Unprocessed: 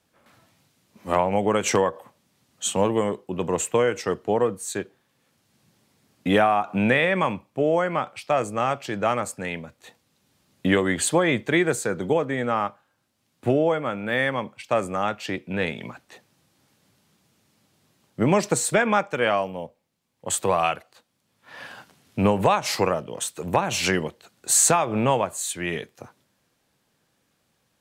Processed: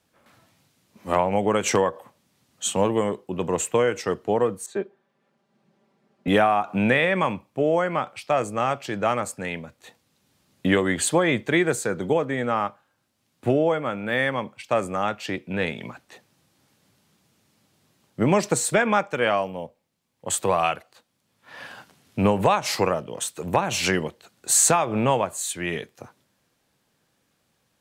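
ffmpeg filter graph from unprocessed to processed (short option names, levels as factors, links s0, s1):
-filter_complex "[0:a]asettb=1/sr,asplit=3[s0][s1][s2];[s0]atrim=end=4.664[s3];[s1]atrim=start=4.66:end=6.28,asetpts=PTS-STARTPTS,afade=t=in:d=0.004:c=qsin,afade=t=out:st=1.616:d=0.004:c=qsin,bandpass=f=520:t=q:w=0.58,aecho=1:1:5.1:0.83,atrim=end_sample=71442[s4];[s2]atrim=start=6.276[s5];[s3][s4]acrossfade=d=0.004:c1=hsin:c2=qsin[s6];[s6][s5]acrossfade=d=0.004:c1=qsin:c2=hsin"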